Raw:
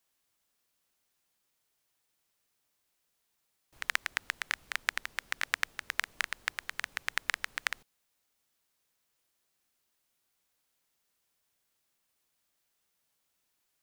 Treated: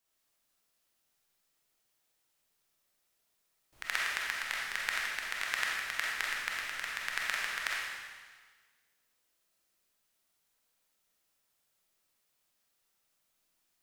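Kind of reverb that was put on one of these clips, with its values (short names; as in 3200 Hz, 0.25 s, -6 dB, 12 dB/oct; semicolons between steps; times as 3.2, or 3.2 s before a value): digital reverb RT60 1.5 s, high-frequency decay 1×, pre-delay 5 ms, DRR -4 dB; gain -4.5 dB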